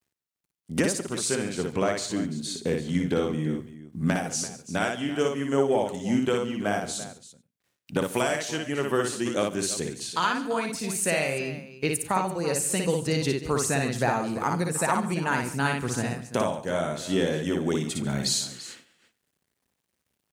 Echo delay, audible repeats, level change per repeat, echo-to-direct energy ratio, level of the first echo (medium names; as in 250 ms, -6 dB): 58 ms, 5, no regular repeats, -3.0 dB, -3.5 dB